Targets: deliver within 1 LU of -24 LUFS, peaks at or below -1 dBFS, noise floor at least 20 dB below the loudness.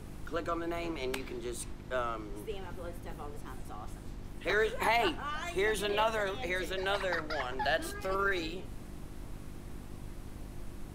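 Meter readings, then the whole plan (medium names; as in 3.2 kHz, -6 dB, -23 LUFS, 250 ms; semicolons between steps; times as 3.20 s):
hum 50 Hz; highest harmonic 350 Hz; hum level -47 dBFS; noise floor -47 dBFS; noise floor target -54 dBFS; loudness -34.0 LUFS; peak level -17.5 dBFS; loudness target -24.0 LUFS
-> de-hum 50 Hz, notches 7; noise print and reduce 7 dB; trim +10 dB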